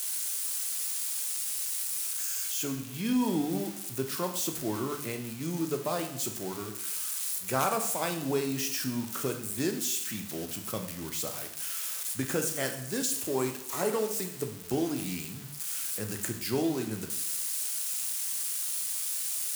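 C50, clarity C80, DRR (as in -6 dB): 8.5 dB, 11.5 dB, 4.5 dB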